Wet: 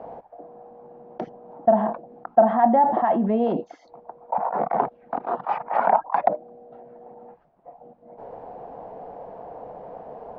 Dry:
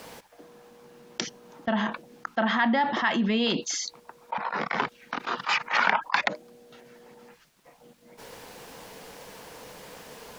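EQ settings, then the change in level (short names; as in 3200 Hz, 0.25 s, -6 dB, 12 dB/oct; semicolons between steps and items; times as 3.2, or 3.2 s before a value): synth low-pass 720 Hz, resonance Q 4.9; +1.5 dB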